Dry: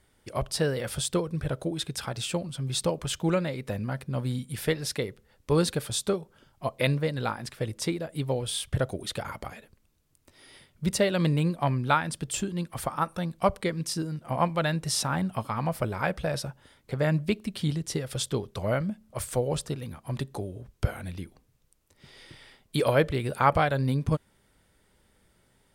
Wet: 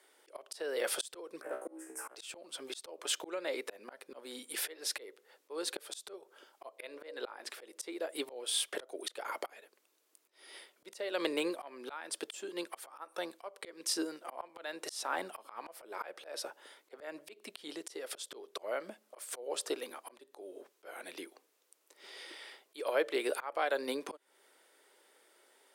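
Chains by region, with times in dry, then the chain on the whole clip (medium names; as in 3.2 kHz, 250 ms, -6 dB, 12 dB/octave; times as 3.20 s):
1.41–2.15 s: Butterworth band-stop 3.9 kHz, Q 0.6 + waveshaping leveller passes 1 + feedback comb 64 Hz, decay 0.35 s, mix 100%
6.78–7.50 s: tone controls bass -6 dB, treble -5 dB + hum notches 60/120/180/240/300/360/420/480/540/600 Hz
whole clip: steep high-pass 340 Hz 36 dB/octave; compression 2.5:1, threshold -30 dBFS; slow attack 315 ms; trim +2.5 dB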